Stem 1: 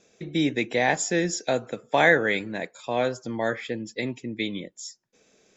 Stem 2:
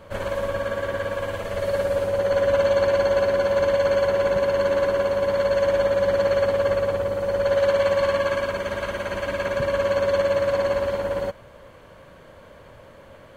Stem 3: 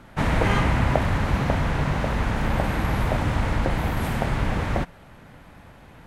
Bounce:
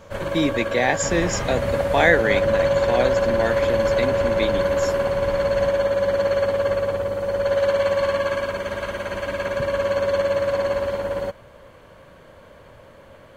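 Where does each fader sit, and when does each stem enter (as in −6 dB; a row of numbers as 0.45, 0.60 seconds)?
+2.0, 0.0, −8.0 decibels; 0.00, 0.00, 0.85 seconds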